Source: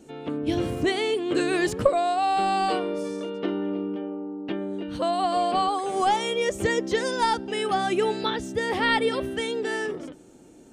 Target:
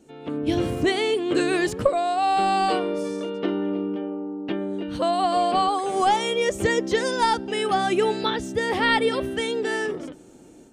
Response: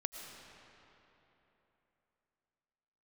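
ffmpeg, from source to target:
-af "dynaudnorm=framelen=190:gausssize=3:maxgain=7dB,volume=-4.5dB"

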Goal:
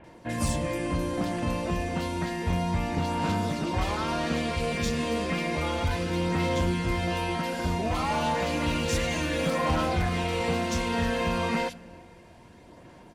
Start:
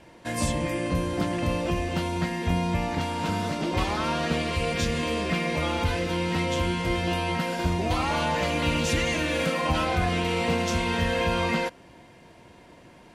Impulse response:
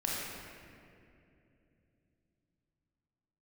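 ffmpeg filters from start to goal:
-filter_complex "[0:a]aphaser=in_gain=1:out_gain=1:delay=4.7:decay=0.29:speed=0.31:type=sinusoidal,volume=19dB,asoftclip=hard,volume=-19dB,acrossover=split=2600[link_01][link_02];[link_02]adelay=40[link_03];[link_01][link_03]amix=inputs=2:normalize=0,asplit=2[link_04][link_05];[1:a]atrim=start_sample=2205[link_06];[link_05][link_06]afir=irnorm=-1:irlink=0,volume=-24dB[link_07];[link_04][link_07]amix=inputs=2:normalize=0,volume=-2dB"

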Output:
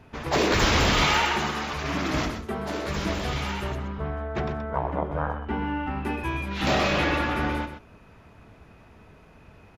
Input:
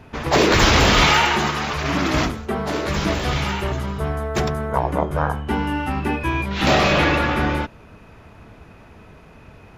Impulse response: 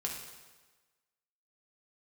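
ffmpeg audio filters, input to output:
-filter_complex "[0:a]asettb=1/sr,asplit=3[link_01][link_02][link_03];[link_01]atrim=end=3.754[link_04];[link_02]atrim=start=3.75:end=6.05,asetpts=PTS-STARTPTS,afade=type=in:duration=0.004:curve=qsin,afade=type=out:start_time=2.296:duration=0.004:curve=qsin,lowpass=2700[link_05];[link_03]atrim=start=6.046[link_06];[link_04][link_05]acrossfade=duration=0.004:curve1=hsin:curve2=qsin[link_07];[link_07][link_06]acrossfade=duration=0.004:curve1=qsin:curve2=hsin,aecho=1:1:126:0.335,volume=-7dB"

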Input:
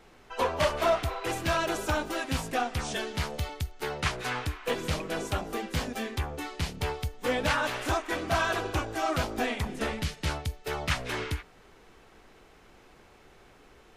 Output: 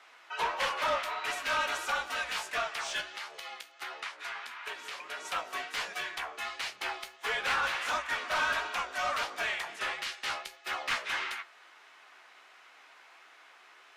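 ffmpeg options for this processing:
ffmpeg -i in.wav -filter_complex "[0:a]highpass=1200,asplit=3[link_01][link_02][link_03];[link_01]afade=type=out:start_time=3:duration=0.02[link_04];[link_02]acompressor=threshold=-42dB:ratio=6,afade=type=in:start_time=3:duration=0.02,afade=type=out:start_time=5.24:duration=0.02[link_05];[link_03]afade=type=in:start_time=5.24:duration=0.02[link_06];[link_04][link_05][link_06]amix=inputs=3:normalize=0,asplit=2[link_07][link_08];[link_08]highpass=frequency=720:poles=1,volume=16dB,asoftclip=type=tanh:threshold=-17.5dB[link_09];[link_07][link_09]amix=inputs=2:normalize=0,lowpass=frequency=2500:poles=1,volume=-6dB,flanger=delay=9.1:depth=7.7:regen=55:speed=1.5:shape=triangular,afreqshift=-62,volume=1.5dB" out.wav

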